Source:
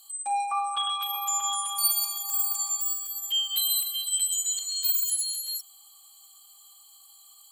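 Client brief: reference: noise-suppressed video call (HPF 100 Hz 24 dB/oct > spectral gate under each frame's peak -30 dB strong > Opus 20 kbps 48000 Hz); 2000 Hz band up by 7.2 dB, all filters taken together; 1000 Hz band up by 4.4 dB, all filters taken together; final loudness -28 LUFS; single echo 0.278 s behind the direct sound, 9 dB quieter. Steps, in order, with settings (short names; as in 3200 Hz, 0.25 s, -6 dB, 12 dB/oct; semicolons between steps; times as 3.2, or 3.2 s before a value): HPF 100 Hz 24 dB/oct; bell 1000 Hz +3.5 dB; bell 2000 Hz +9 dB; echo 0.278 s -9 dB; spectral gate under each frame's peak -30 dB strong; gain -4.5 dB; Opus 20 kbps 48000 Hz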